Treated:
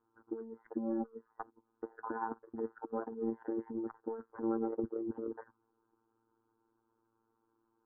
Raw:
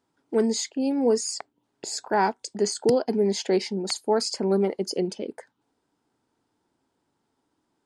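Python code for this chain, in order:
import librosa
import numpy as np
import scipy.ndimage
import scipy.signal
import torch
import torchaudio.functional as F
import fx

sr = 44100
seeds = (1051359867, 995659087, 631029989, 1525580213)

y = fx.comb(x, sr, ms=4.1, depth=0.37, at=(0.62, 2.29))
y = fx.level_steps(y, sr, step_db=18)
y = 10.0 ** (-24.0 / 20.0) * np.tanh(y / 10.0 ** (-24.0 / 20.0))
y = fx.robotise(y, sr, hz=113.0)
y = fx.over_compress(y, sr, threshold_db=-44.0, ratio=-0.5)
y = scipy.signal.sosfilt(scipy.signal.butter(8, 1600.0, 'lowpass', fs=sr, output='sos'), y)
y = fx.fixed_phaser(y, sr, hz=630.0, stages=6)
y = F.gain(torch.from_numpy(y), 10.5).numpy()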